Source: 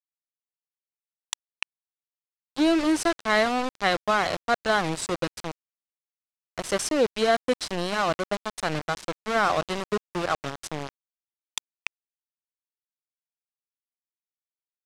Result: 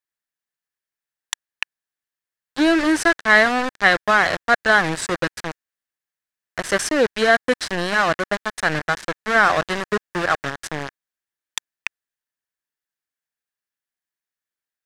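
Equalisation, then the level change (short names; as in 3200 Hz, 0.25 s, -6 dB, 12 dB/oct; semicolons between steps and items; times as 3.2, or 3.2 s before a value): bell 1700 Hz +11 dB 0.46 oct; +4.0 dB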